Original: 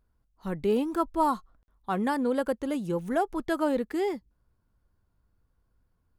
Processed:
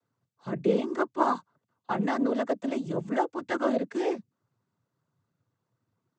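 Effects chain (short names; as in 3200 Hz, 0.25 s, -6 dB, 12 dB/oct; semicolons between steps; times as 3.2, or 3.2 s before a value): noise vocoder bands 16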